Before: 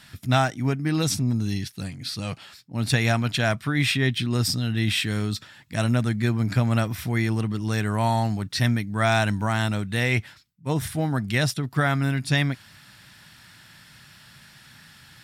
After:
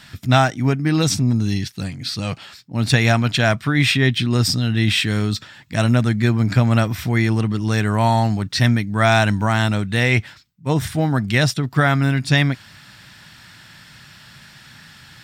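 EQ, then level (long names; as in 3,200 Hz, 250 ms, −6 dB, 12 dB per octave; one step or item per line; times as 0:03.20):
parametric band 11,000 Hz −12.5 dB 0.34 octaves
+6.0 dB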